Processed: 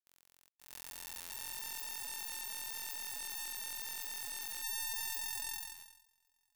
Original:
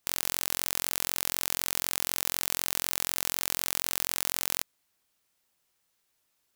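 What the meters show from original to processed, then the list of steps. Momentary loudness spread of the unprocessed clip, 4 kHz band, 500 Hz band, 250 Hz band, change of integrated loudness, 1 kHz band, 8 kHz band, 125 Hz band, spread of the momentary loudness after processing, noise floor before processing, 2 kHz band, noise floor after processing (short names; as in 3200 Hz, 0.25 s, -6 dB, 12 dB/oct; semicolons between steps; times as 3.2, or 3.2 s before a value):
0 LU, -11.0 dB, -20.5 dB, -20.5 dB, -11.0 dB, -11.0 dB, -11.0 dB, under -15 dB, 10 LU, -76 dBFS, -9.5 dB, -78 dBFS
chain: block floating point 3-bit; on a send: swelling echo 92 ms, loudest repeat 8, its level -12 dB; on the sum: gate -34 dBFS, range -37 dB; limiter -21.5 dBFS, peak gain reduction 19 dB; stuck buffer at 0.49/1.2/3.35/5.73, samples 512, times 8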